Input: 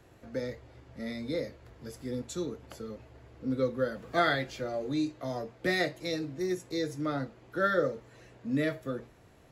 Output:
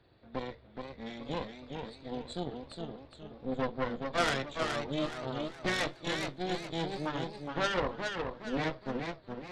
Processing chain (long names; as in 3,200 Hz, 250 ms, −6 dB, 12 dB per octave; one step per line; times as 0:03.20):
hearing-aid frequency compression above 3,300 Hz 4 to 1
harmonic generator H 3 −12 dB, 5 −28 dB, 8 −18 dB, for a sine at −13 dBFS
feedback echo with a swinging delay time 418 ms, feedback 38%, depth 139 cents, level −5 dB